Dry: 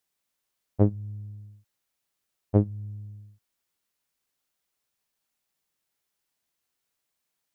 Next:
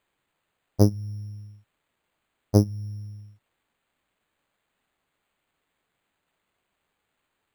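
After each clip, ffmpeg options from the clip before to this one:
ffmpeg -i in.wav -af "acrusher=samples=8:mix=1:aa=0.000001,volume=3dB" out.wav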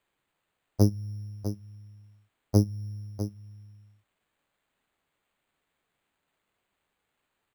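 ffmpeg -i in.wav -filter_complex "[0:a]acrossover=split=400|3000[link_01][link_02][link_03];[link_02]acompressor=threshold=-29dB:ratio=6[link_04];[link_01][link_04][link_03]amix=inputs=3:normalize=0,aecho=1:1:650:0.299,volume=-2.5dB" out.wav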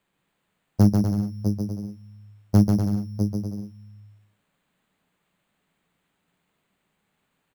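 ffmpeg -i in.wav -af "asoftclip=type=hard:threshold=-16.5dB,equalizer=frequency=180:width=1.7:gain=11.5,aecho=1:1:140|245|323.8|382.8|427.1:0.631|0.398|0.251|0.158|0.1,volume=2.5dB" out.wav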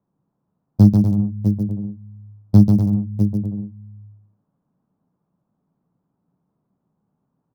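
ffmpeg -i in.wav -filter_complex "[0:a]equalizer=frequency=125:width_type=o:width=1:gain=11,equalizer=frequency=250:width_type=o:width=1:gain=7,equalizer=frequency=1000:width_type=o:width=1:gain=4,equalizer=frequency=2000:width_type=o:width=1:gain=-11,equalizer=frequency=4000:width_type=o:width=1:gain=11,equalizer=frequency=8000:width_type=o:width=1:gain=-12,acrossover=split=1400[link_01][link_02];[link_02]acrusher=bits=5:mix=0:aa=0.000001[link_03];[link_01][link_03]amix=inputs=2:normalize=0,volume=-3dB" out.wav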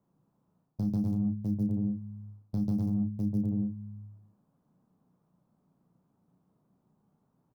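ffmpeg -i in.wav -filter_complex "[0:a]alimiter=limit=-11.5dB:level=0:latency=1:release=68,areverse,acompressor=threshold=-26dB:ratio=10,areverse,asplit=2[link_01][link_02];[link_02]adelay=33,volume=-7dB[link_03];[link_01][link_03]amix=inputs=2:normalize=0" out.wav

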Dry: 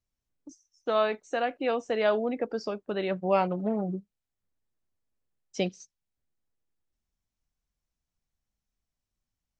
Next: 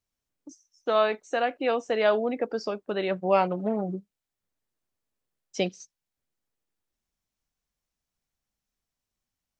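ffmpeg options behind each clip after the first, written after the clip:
ffmpeg -i in.wav -af "lowshelf=frequency=150:gain=-8.5,volume=3dB" out.wav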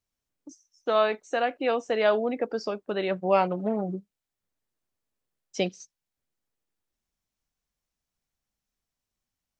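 ffmpeg -i in.wav -af anull out.wav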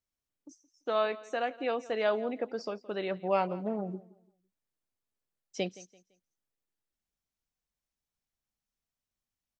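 ffmpeg -i in.wav -af "aecho=1:1:169|338|507:0.106|0.0328|0.0102,volume=-6dB" out.wav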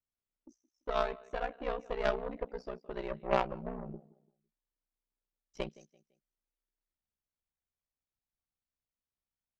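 ffmpeg -i in.wav -af "aeval=exprs='0.168*(cos(1*acos(clip(val(0)/0.168,-1,1)))-cos(1*PI/2))+0.0376*(cos(3*acos(clip(val(0)/0.168,-1,1)))-cos(3*PI/2))+0.00335*(cos(5*acos(clip(val(0)/0.168,-1,1)))-cos(5*PI/2))+0.0119*(cos(6*acos(clip(val(0)/0.168,-1,1)))-cos(6*PI/2))':channel_layout=same,aeval=exprs='val(0)*sin(2*PI*31*n/s)':channel_layout=same,aemphasis=mode=reproduction:type=75kf,volume=5dB" out.wav

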